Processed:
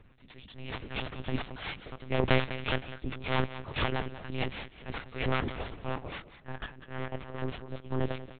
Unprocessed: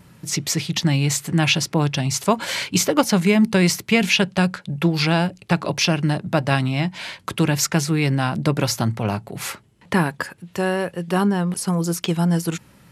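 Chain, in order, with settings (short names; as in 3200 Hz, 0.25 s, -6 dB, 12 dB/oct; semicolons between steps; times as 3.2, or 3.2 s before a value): auto swell 0.401 s; plain phase-vocoder stretch 0.65×; added harmonics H 3 -7 dB, 4 -23 dB, 8 -21 dB, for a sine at -8.5 dBFS; in parallel at -6.5 dB: soft clip -23.5 dBFS, distortion -13 dB; on the sum: flange 1.6 Hz, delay 1.9 ms, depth 3.1 ms, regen -87%; on a send: feedback echo 0.191 s, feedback 28%, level -14 dB; on the sum: monotone LPC vocoder at 8 kHz 130 Hz; gain +4.5 dB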